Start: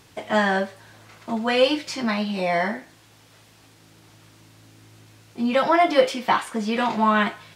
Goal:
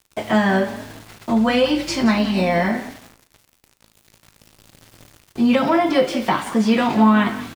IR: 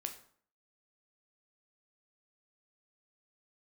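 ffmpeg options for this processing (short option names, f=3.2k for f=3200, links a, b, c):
-filter_complex "[0:a]acrossover=split=280[a][b];[b]acompressor=threshold=-25dB:ratio=3[c];[a][c]amix=inputs=2:normalize=0,asplit=4[d][e][f][g];[e]adelay=176,afreqshift=39,volume=-15dB[h];[f]adelay=352,afreqshift=78,volume=-24.1dB[i];[g]adelay=528,afreqshift=117,volume=-33.2dB[j];[d][h][i][j]amix=inputs=4:normalize=0,aeval=exprs='val(0)*gte(abs(val(0)),0.00631)':c=same,asettb=1/sr,asplit=3[k][l][m];[k]atrim=end=1.304[n];[l]atrim=start=1.3:end=2.69,asetpts=PTS-STARTPTS,afade=t=in:d=0.004:c=qsin,afade=t=out:st=1.386:d=0.004:c=qsin,aeval=exprs='val(0)+0.00178*(sin(2*PI*50*n/s)+sin(2*PI*2*50*n/s)/2+sin(2*PI*3*50*n/s)/3+sin(2*PI*4*50*n/s)/4+sin(2*PI*5*50*n/s)/5)':c=same[o];[m]atrim=start=2.686[p];[n][o]acrossfade=d=0.004:c1=hsin:c2=qsin[q];[q][p]acrossfade=d=0.004:c1=qsin:c2=hsin,asplit=2[r][s];[1:a]atrim=start_sample=2205,lowshelf=f=210:g=11.5[t];[s][t]afir=irnorm=-1:irlink=0,volume=2.5dB[u];[r][u]amix=inputs=2:normalize=0"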